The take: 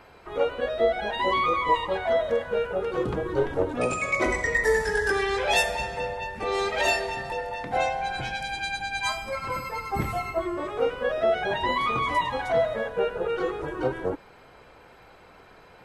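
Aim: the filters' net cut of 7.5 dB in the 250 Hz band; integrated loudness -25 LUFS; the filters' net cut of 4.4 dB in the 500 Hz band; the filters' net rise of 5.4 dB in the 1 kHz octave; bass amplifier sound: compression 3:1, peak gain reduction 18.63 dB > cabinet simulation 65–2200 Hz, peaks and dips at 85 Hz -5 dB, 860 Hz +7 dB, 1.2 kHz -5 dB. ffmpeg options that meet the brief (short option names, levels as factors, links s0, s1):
-af "equalizer=f=250:t=o:g=-8.5,equalizer=f=500:t=o:g=-7,equalizer=f=1000:t=o:g=6.5,acompressor=threshold=0.0112:ratio=3,highpass=f=65:w=0.5412,highpass=f=65:w=1.3066,equalizer=f=85:t=q:w=4:g=-5,equalizer=f=860:t=q:w=4:g=7,equalizer=f=1200:t=q:w=4:g=-5,lowpass=f=2200:w=0.5412,lowpass=f=2200:w=1.3066,volume=4.22"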